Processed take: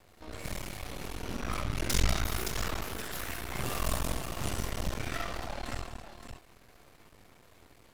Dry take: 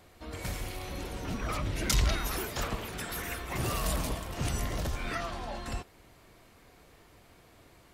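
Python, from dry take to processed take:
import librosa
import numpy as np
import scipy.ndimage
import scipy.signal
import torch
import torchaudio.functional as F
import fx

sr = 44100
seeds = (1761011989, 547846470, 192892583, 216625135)

y = fx.echo_multitap(x, sr, ms=(48, 69, 193, 272, 505, 568), db=(-5.0, -6.5, -8.5, -13.0, -18.0, -7.0))
y = np.maximum(y, 0.0)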